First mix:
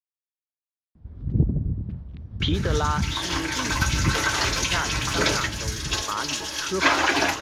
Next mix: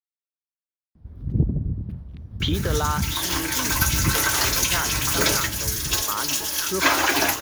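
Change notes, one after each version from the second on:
master: remove low-pass filter 5,200 Hz 12 dB per octave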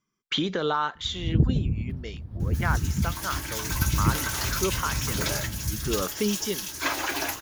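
speech: entry −2.10 s
second sound −8.5 dB

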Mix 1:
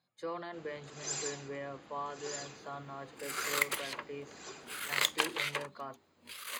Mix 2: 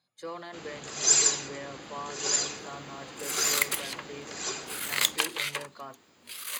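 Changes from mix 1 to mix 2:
first sound +10.0 dB
master: add high-shelf EQ 3,600 Hz +9.5 dB

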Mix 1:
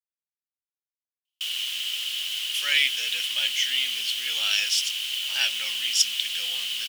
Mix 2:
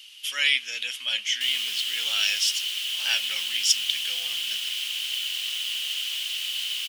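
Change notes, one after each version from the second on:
speech: entry −2.30 s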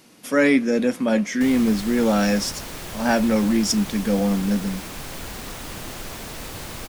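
master: remove high-pass with resonance 3,000 Hz, resonance Q 12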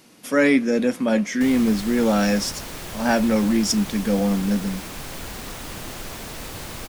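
nothing changed

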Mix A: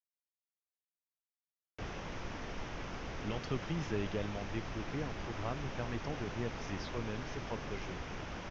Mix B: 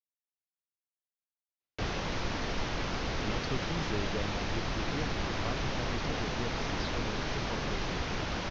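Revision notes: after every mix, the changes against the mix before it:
background +8.5 dB
master: add parametric band 4,200 Hz +8.5 dB 0.53 octaves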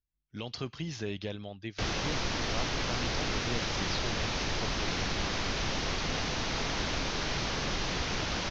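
speech: entry −2.90 s
master: add high-shelf EQ 3,300 Hz +9.5 dB

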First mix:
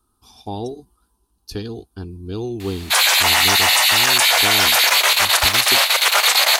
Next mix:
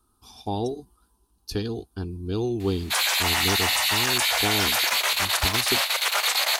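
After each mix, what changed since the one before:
background −8.5 dB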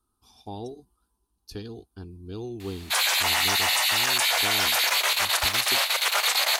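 speech −9.0 dB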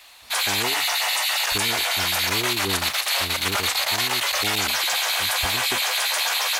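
speech +4.0 dB
background: entry −2.60 s

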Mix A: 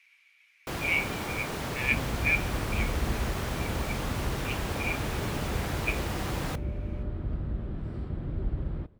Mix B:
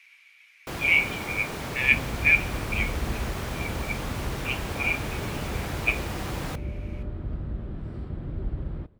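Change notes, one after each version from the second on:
speech +7.0 dB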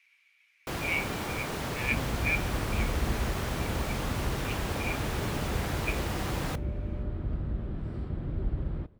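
speech −10.5 dB

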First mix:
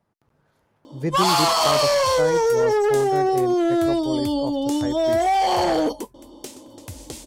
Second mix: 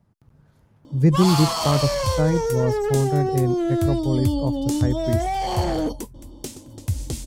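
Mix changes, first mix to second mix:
first sound −6.5 dB
master: add bass and treble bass +15 dB, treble +3 dB

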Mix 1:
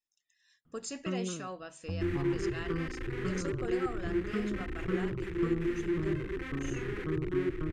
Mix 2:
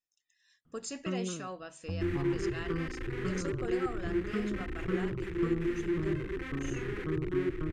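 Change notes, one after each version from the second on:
nothing changed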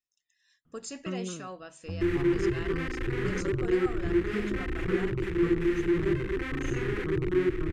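second sound +6.0 dB

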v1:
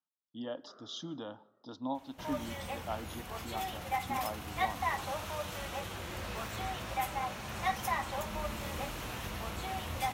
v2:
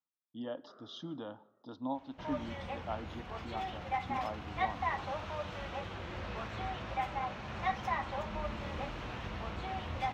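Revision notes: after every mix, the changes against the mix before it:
master: add high-frequency loss of the air 200 metres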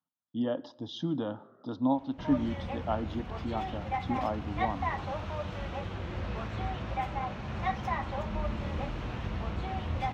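speech +5.5 dB
first sound: entry +0.55 s
master: add low-shelf EQ 380 Hz +8.5 dB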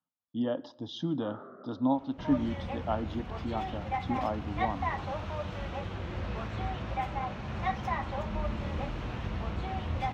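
first sound +11.0 dB

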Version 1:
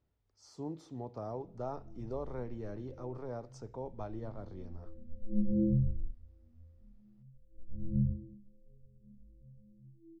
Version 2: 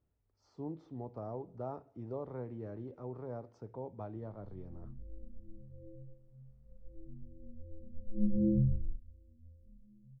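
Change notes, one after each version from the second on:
speech: add head-to-tape spacing loss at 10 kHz 29 dB
background: entry +2.85 s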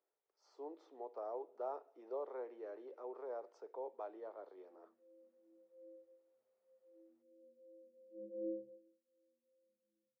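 master: add Butterworth high-pass 390 Hz 36 dB per octave

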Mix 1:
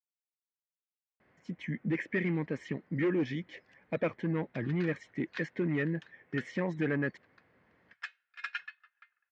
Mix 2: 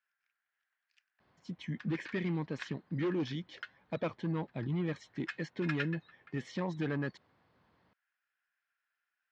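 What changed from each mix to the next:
speech: add graphic EQ with 10 bands 250 Hz −3 dB, 500 Hz −5 dB, 1,000 Hz +4 dB, 2,000 Hz −11 dB, 4,000 Hz +9 dB
background: entry −2.75 s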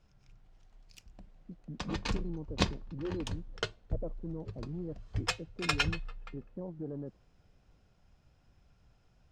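speech: add transistor ladder low-pass 720 Hz, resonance 30%
background: remove four-pole ladder band-pass 1,800 Hz, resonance 70%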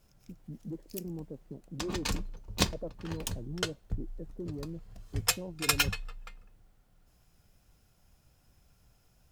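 speech: entry −1.20 s
master: remove high-frequency loss of the air 130 metres

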